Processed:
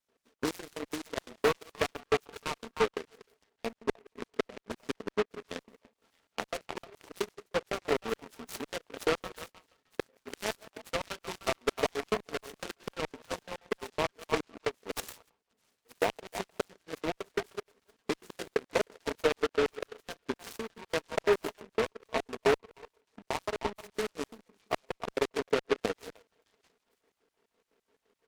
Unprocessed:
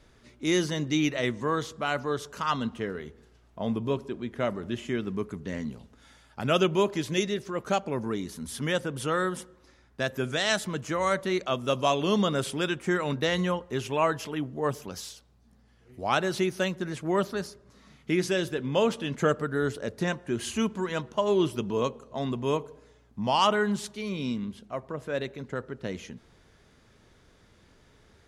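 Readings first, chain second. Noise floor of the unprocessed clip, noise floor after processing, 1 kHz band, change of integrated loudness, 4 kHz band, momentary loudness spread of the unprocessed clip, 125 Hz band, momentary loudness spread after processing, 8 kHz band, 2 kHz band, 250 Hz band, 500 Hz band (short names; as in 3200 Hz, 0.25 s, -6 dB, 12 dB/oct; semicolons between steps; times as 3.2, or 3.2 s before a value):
-60 dBFS, -83 dBFS, -6.5 dB, -6.0 dB, -6.5 dB, 11 LU, -14.5 dB, 13 LU, -5.5 dB, -5.0 dB, -11.0 dB, -4.0 dB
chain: reverse delay 0.115 s, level -13.5 dB; high shelf 5300 Hz -3.5 dB; notch 370 Hz, Q 12; comb 4.4 ms, depth 70%; compressor 16:1, threshold -36 dBFS, peak gain reduction 21 dB; LFO high-pass square 5.9 Hz 380–6000 Hz; delay with a stepping band-pass 0.307 s, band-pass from 960 Hz, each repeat 1.4 oct, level -1.5 dB; added harmonics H 5 -18 dB, 7 -13 dB, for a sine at -21 dBFS; air absorption 66 m; noise-modulated delay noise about 1300 Hz, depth 0.11 ms; gain +7.5 dB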